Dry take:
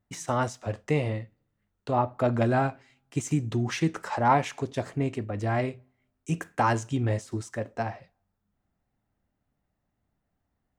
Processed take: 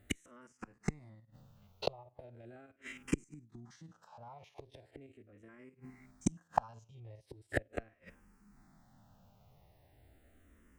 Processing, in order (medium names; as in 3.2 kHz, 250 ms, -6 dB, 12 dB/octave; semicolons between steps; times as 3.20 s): spectrogram pixelated in time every 50 ms; 3.24–3.67 s: gate -29 dBFS, range -10 dB; peak limiter -20 dBFS, peak gain reduction 9 dB; inverted gate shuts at -31 dBFS, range -40 dB; barber-pole phaser -0.39 Hz; trim +18 dB